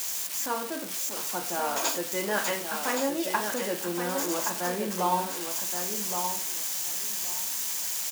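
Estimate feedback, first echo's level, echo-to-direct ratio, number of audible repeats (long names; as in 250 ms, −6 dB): 18%, −6.5 dB, −6.5 dB, 2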